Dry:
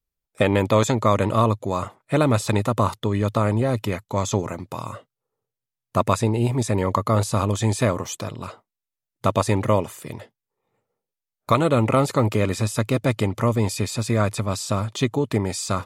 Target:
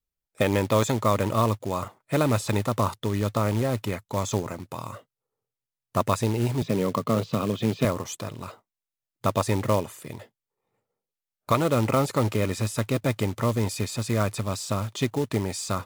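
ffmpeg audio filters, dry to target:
ffmpeg -i in.wav -filter_complex "[0:a]asettb=1/sr,asplit=3[link_01][link_02][link_03];[link_01]atrim=end=6.624[link_04];[link_02]atrim=start=6.62:end=7.85,asetpts=PTS-STARTPTS,afade=type=in:duration=0.004:curve=qsin,afade=type=out:start_time=1.226:duration=0.004:curve=qsin,highpass=frequency=120:width=0.5412,highpass=frequency=120:width=1.3066,equalizer=frequency=160:width_type=q:width=4:gain=8,equalizer=frequency=240:width_type=q:width=4:gain=5,equalizer=frequency=440:width_type=q:width=4:gain=4,equalizer=frequency=880:width_type=q:width=4:gain=-8,equalizer=frequency=1700:width_type=q:width=4:gain=-8,equalizer=frequency=3000:width_type=q:width=4:gain=4,lowpass=frequency=4000:width=0.5412,lowpass=frequency=4000:width=1.3066[link_05];[link_03]atrim=start=7.846[link_06];[link_04][link_05]acrossfade=duration=0.004:curve1=hsin:curve2=qsin[link_07];[link_07][link_06]acrossfade=duration=0.004:curve1=qsin:curve2=hsin,acrusher=bits=4:mode=log:mix=0:aa=0.000001,volume=-4dB" out.wav

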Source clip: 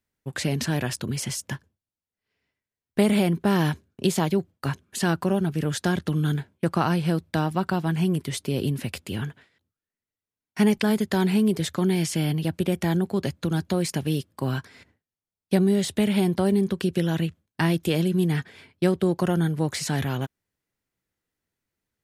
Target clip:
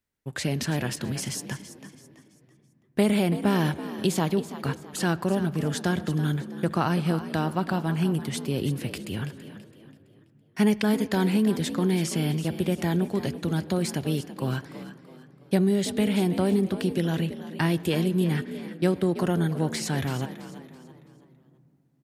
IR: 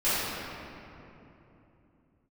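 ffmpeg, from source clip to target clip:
-filter_complex "[0:a]asplit=5[link_01][link_02][link_03][link_04][link_05];[link_02]adelay=331,afreqshift=61,volume=-13dB[link_06];[link_03]adelay=662,afreqshift=122,volume=-21.9dB[link_07];[link_04]adelay=993,afreqshift=183,volume=-30.7dB[link_08];[link_05]adelay=1324,afreqshift=244,volume=-39.6dB[link_09];[link_01][link_06][link_07][link_08][link_09]amix=inputs=5:normalize=0,asplit=2[link_10][link_11];[1:a]atrim=start_sample=2205,lowpass=4800[link_12];[link_11][link_12]afir=irnorm=-1:irlink=0,volume=-31.5dB[link_13];[link_10][link_13]amix=inputs=2:normalize=0,volume=-2dB"

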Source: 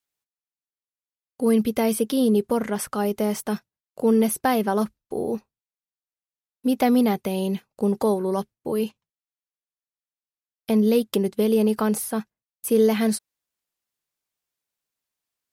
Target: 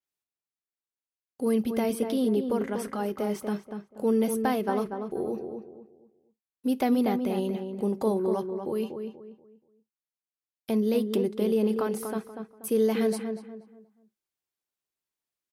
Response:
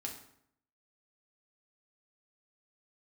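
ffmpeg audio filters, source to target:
-filter_complex "[0:a]equalizer=frequency=360:width=7:gain=6.5,asplit=2[link_01][link_02];[link_02]adelay=240,lowpass=frequency=1700:poles=1,volume=-6dB,asplit=2[link_03][link_04];[link_04]adelay=240,lowpass=frequency=1700:poles=1,volume=0.32,asplit=2[link_05][link_06];[link_06]adelay=240,lowpass=frequency=1700:poles=1,volume=0.32,asplit=2[link_07][link_08];[link_08]adelay=240,lowpass=frequency=1700:poles=1,volume=0.32[link_09];[link_01][link_03][link_05][link_07][link_09]amix=inputs=5:normalize=0,asplit=2[link_10][link_11];[1:a]atrim=start_sample=2205,atrim=end_sample=3087[link_12];[link_11][link_12]afir=irnorm=-1:irlink=0,volume=-13dB[link_13];[link_10][link_13]amix=inputs=2:normalize=0,adynamicequalizer=threshold=0.00501:dfrequency=4800:dqfactor=0.7:tfrequency=4800:tqfactor=0.7:attack=5:release=100:ratio=0.375:range=3:mode=cutabove:tftype=highshelf,volume=-7.5dB"

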